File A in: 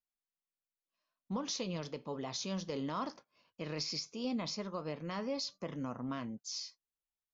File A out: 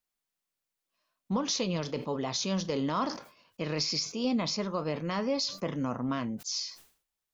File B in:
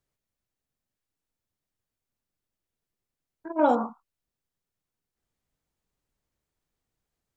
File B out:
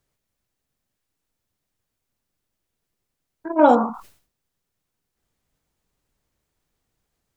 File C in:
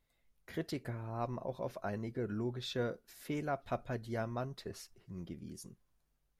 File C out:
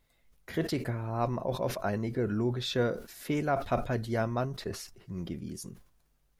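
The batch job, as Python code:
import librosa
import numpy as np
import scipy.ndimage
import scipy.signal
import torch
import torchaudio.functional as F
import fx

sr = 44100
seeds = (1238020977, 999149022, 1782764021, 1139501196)

y = fx.sustainer(x, sr, db_per_s=120.0)
y = y * 10.0 ** (7.5 / 20.0)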